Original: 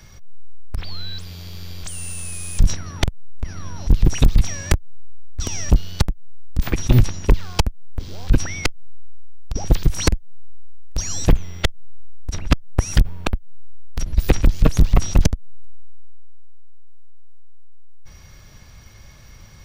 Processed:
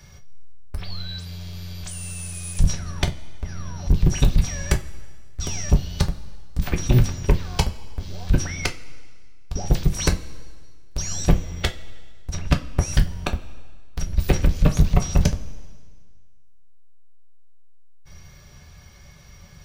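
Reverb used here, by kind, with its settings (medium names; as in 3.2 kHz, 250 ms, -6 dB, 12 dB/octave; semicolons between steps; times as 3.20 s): two-slope reverb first 0.2 s, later 1.7 s, from -20 dB, DRR 2 dB; trim -4 dB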